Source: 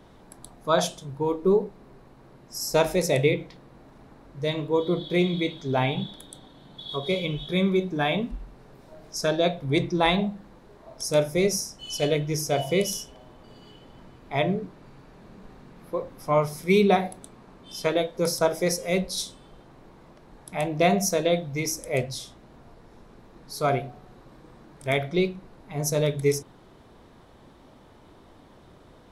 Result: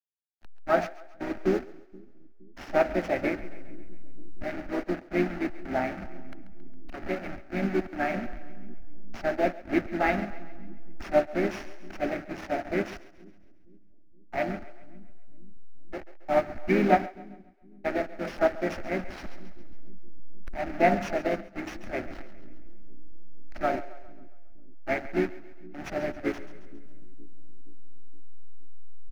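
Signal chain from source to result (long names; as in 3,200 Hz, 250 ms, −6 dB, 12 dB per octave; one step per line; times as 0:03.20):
hold until the input has moved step −24.5 dBFS
high-shelf EQ 2,500 Hz +9.5 dB
pitch-shifted copies added −4 semitones −10 dB, +4 semitones −11 dB
phaser with its sweep stopped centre 690 Hz, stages 8
in parallel at −8.5 dB: sample-rate reduction 8,300 Hz, jitter 0%
on the sum: high-frequency loss of the air 280 metres
on a send: echo with a time of its own for lows and highs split 330 Hz, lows 470 ms, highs 136 ms, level −14 dB
on the sum: expander for the loud parts 1.5 to 1, over −42 dBFS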